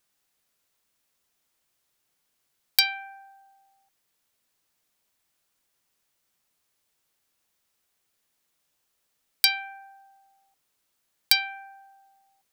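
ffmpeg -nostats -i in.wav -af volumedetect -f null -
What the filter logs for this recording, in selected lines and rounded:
mean_volume: -35.8 dB
max_volume: -1.7 dB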